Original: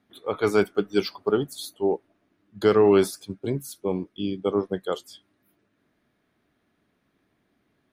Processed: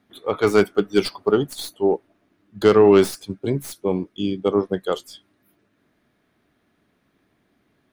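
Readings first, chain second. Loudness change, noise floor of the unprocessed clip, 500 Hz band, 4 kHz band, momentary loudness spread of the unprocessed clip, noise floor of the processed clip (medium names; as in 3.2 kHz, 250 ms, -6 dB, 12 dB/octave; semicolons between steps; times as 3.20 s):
+4.5 dB, -72 dBFS, +4.5 dB, +4.5 dB, 13 LU, -68 dBFS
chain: tracing distortion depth 0.047 ms; trim +4.5 dB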